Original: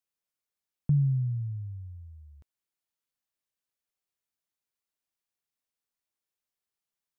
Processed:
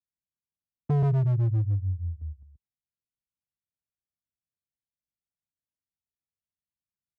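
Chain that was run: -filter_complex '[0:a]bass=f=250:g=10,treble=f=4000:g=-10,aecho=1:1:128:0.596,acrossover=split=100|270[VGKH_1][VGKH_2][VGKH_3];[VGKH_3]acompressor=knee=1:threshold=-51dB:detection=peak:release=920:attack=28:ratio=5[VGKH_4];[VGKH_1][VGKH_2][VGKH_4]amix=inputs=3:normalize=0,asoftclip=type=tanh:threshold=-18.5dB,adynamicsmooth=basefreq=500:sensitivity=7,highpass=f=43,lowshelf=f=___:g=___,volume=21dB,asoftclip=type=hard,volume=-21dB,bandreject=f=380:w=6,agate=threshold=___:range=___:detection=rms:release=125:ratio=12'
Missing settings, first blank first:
130, 3.5, -35dB, -8dB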